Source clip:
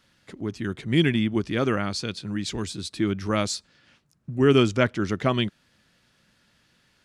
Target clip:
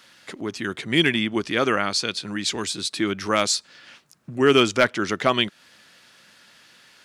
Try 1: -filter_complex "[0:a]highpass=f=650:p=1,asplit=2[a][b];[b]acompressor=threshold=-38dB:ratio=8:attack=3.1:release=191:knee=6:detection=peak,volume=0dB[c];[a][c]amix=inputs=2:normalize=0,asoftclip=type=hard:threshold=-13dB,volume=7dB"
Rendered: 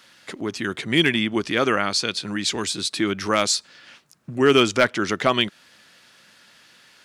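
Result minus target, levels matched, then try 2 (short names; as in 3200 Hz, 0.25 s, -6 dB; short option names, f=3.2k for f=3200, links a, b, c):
compressor: peak gain reduction -8.5 dB
-filter_complex "[0:a]highpass=f=650:p=1,asplit=2[a][b];[b]acompressor=threshold=-47.5dB:ratio=8:attack=3.1:release=191:knee=6:detection=peak,volume=0dB[c];[a][c]amix=inputs=2:normalize=0,asoftclip=type=hard:threshold=-13dB,volume=7dB"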